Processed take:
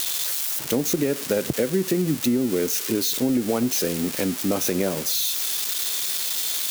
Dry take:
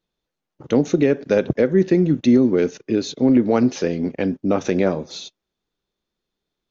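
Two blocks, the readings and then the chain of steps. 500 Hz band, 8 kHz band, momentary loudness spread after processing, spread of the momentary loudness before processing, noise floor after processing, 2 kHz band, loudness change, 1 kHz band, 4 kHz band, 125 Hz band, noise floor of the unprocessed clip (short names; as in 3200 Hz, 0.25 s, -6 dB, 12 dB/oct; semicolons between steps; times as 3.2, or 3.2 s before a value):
-6.0 dB, n/a, 2 LU, 8 LU, -32 dBFS, -1.0 dB, -3.5 dB, -4.5 dB, +10.0 dB, -5.5 dB, -83 dBFS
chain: switching spikes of -12 dBFS; compressor, threshold -16 dBFS, peak gain reduction 6.5 dB; gain -2 dB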